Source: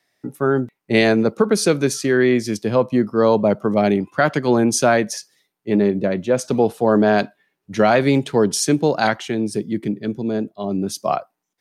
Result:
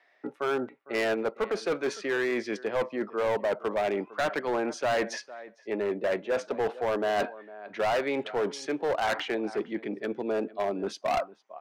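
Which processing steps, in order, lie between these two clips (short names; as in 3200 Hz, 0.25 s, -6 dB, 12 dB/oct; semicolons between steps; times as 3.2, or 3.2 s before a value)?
reverse; compressor 12:1, threshold -24 dBFS, peak gain reduction 15 dB; reverse; Butterworth band-pass 1100 Hz, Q 0.53; outdoor echo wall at 78 m, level -20 dB; overloaded stage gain 30 dB; gain +7 dB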